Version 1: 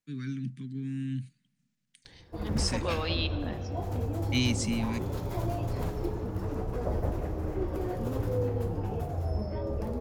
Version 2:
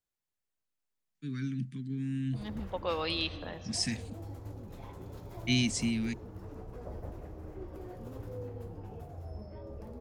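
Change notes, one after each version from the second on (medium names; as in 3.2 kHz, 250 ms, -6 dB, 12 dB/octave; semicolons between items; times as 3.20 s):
first voice: entry +1.15 s; background -12.0 dB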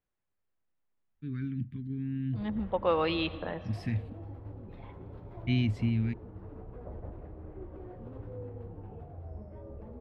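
first voice: remove Chebyshev band-pass 130–9400 Hz, order 5; second voice +8.0 dB; master: add distance through air 480 m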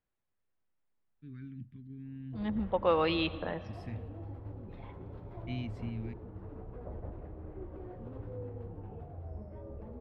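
first voice -10.5 dB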